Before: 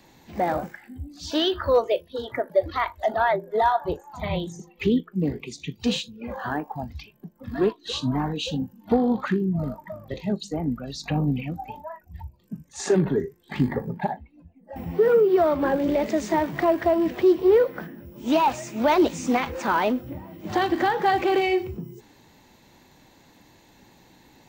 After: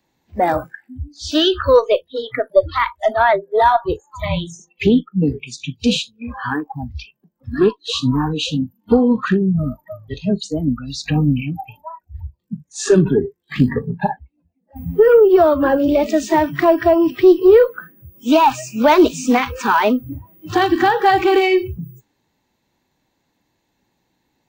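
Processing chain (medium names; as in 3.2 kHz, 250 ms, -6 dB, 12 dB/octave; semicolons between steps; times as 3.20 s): spectral noise reduction 22 dB; Chebyshev shaper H 2 -25 dB, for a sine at -9.5 dBFS; trim +8 dB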